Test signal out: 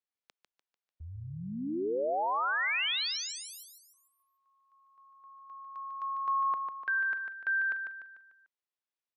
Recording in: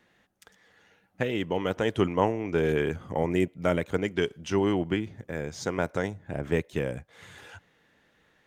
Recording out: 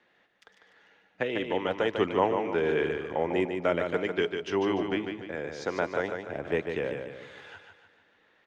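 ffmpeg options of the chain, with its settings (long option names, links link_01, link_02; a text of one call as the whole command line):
ffmpeg -i in.wav -filter_complex "[0:a]acrossover=split=280 5100:gain=0.251 1 0.0891[link_01][link_02][link_03];[link_01][link_02][link_03]amix=inputs=3:normalize=0,aecho=1:1:148|296|444|592|740:0.501|0.221|0.097|0.0427|0.0188" out.wav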